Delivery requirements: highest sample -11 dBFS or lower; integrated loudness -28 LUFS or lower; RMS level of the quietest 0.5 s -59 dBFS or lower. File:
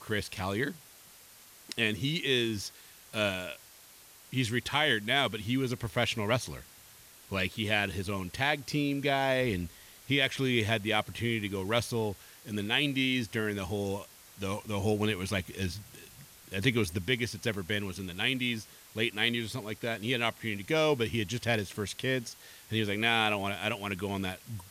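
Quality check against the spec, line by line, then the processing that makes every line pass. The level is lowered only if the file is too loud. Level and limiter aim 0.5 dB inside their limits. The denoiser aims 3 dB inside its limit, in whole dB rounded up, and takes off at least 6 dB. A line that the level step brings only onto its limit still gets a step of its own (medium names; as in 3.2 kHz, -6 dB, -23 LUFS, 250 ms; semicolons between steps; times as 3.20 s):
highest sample -12.0 dBFS: pass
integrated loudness -31.0 LUFS: pass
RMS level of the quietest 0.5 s -55 dBFS: fail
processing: noise reduction 7 dB, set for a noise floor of -55 dBFS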